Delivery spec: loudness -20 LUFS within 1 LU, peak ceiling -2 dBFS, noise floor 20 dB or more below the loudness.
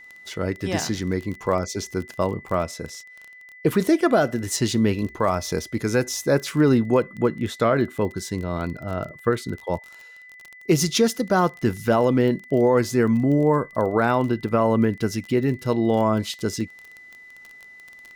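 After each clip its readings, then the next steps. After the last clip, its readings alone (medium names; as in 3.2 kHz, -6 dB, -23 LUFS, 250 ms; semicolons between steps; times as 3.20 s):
tick rate 22 per s; steady tone 2 kHz; tone level -43 dBFS; loudness -22.5 LUFS; peak level -8.5 dBFS; loudness target -20.0 LUFS
-> de-click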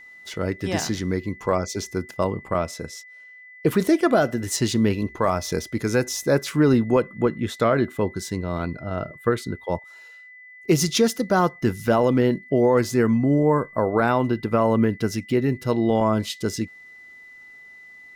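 tick rate 0.44 per s; steady tone 2 kHz; tone level -43 dBFS
-> band-stop 2 kHz, Q 30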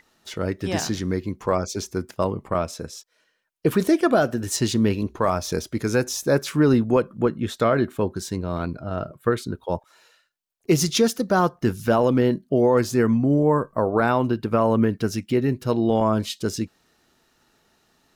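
steady tone not found; loudness -22.5 LUFS; peak level -8.5 dBFS; loudness target -20.0 LUFS
-> trim +2.5 dB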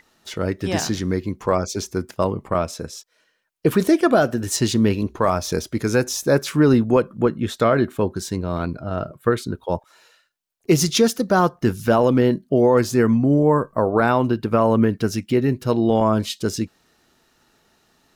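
loudness -20.0 LUFS; peak level -6.0 dBFS; noise floor -64 dBFS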